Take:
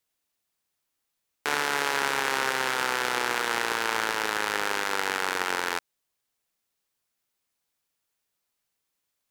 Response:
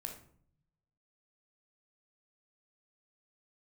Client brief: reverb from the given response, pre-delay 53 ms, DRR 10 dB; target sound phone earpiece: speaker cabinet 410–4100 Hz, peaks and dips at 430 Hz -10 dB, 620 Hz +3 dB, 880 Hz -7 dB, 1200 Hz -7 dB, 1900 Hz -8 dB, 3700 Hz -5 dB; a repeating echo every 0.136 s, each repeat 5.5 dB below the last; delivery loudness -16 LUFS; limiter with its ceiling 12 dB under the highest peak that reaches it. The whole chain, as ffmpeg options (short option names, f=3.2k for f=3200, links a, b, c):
-filter_complex "[0:a]alimiter=limit=-19dB:level=0:latency=1,aecho=1:1:136|272|408|544|680|816|952:0.531|0.281|0.149|0.079|0.0419|0.0222|0.0118,asplit=2[a][b];[1:a]atrim=start_sample=2205,adelay=53[c];[b][c]afir=irnorm=-1:irlink=0,volume=-8dB[d];[a][d]amix=inputs=2:normalize=0,highpass=410,equalizer=f=430:t=q:w=4:g=-10,equalizer=f=620:t=q:w=4:g=3,equalizer=f=880:t=q:w=4:g=-7,equalizer=f=1.2k:t=q:w=4:g=-7,equalizer=f=1.9k:t=q:w=4:g=-8,equalizer=f=3.7k:t=q:w=4:g=-5,lowpass=f=4.1k:w=0.5412,lowpass=f=4.1k:w=1.3066,volume=23dB"